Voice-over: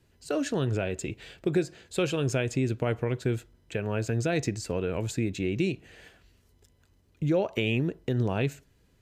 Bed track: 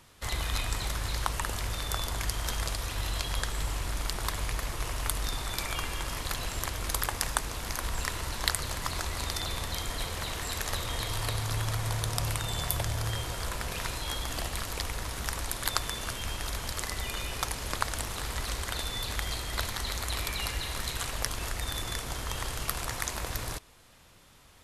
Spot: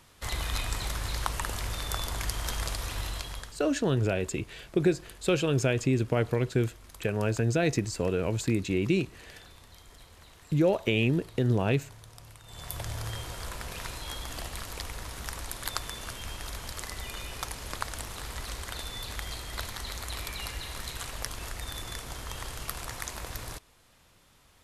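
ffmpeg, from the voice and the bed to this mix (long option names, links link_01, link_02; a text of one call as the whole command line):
ffmpeg -i stem1.wav -i stem2.wav -filter_complex "[0:a]adelay=3300,volume=1.5dB[link_01];[1:a]volume=15dB,afade=type=out:start_time=2.94:duration=0.65:silence=0.112202,afade=type=in:start_time=12.44:duration=0.47:silence=0.16788[link_02];[link_01][link_02]amix=inputs=2:normalize=0" out.wav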